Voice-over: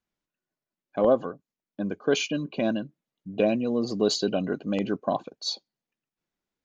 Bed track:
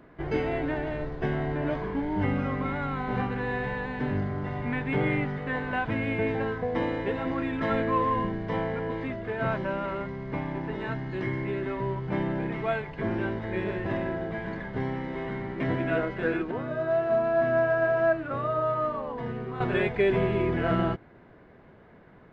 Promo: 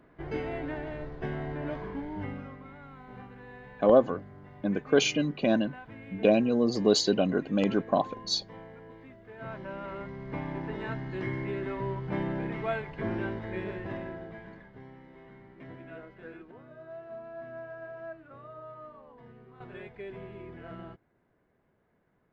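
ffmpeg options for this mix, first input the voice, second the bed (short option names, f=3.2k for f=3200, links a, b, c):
-filter_complex "[0:a]adelay=2850,volume=1dB[a];[1:a]volume=8.5dB,afade=t=out:st=1.89:d=0.71:silence=0.266073,afade=t=in:st=9.25:d=1.25:silence=0.188365,afade=t=out:st=13.14:d=1.64:silence=0.16788[b];[a][b]amix=inputs=2:normalize=0"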